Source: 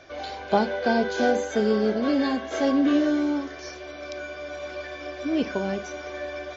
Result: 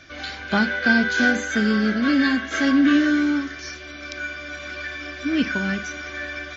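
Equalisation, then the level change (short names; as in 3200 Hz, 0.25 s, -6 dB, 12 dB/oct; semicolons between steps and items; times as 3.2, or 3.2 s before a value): dynamic EQ 1600 Hz, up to +7 dB, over -43 dBFS, Q 1.2; band shelf 620 Hz -12.5 dB; +5.5 dB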